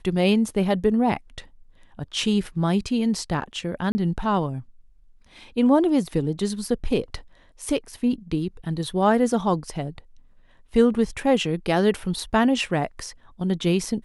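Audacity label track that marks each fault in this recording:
3.920000	3.950000	drop-out 30 ms

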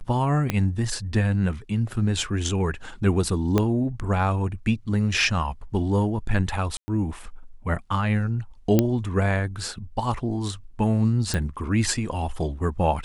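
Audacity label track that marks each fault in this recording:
0.500000	0.500000	click −9 dBFS
3.580000	3.580000	click −8 dBFS
6.770000	6.880000	drop-out 110 ms
8.790000	8.790000	click −5 dBFS
11.340000	11.340000	click −12 dBFS

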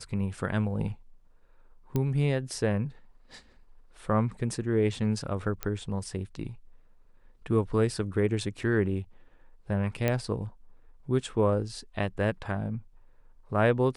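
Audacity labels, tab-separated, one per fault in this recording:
1.960000	1.960000	click −16 dBFS
5.630000	5.630000	click −15 dBFS
10.080000	10.080000	click −13 dBFS

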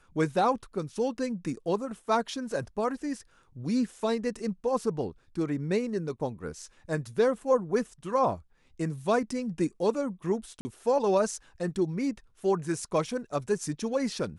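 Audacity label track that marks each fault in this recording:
10.610000	10.650000	drop-out 40 ms

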